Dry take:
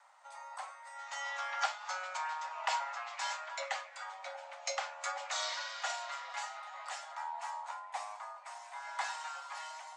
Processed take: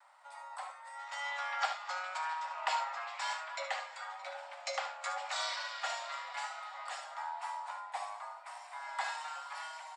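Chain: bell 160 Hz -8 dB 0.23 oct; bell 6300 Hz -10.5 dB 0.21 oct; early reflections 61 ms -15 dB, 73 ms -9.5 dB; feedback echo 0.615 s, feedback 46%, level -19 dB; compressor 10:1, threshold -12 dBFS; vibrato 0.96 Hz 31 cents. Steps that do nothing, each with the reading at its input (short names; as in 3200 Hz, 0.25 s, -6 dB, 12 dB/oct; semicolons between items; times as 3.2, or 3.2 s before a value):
bell 160 Hz: input band starts at 480 Hz; compressor, threshold -12 dBFS: input peak -18.0 dBFS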